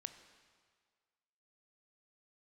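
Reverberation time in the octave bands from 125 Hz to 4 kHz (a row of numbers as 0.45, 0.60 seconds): 1.6, 1.6, 1.8, 1.8, 1.7, 1.6 seconds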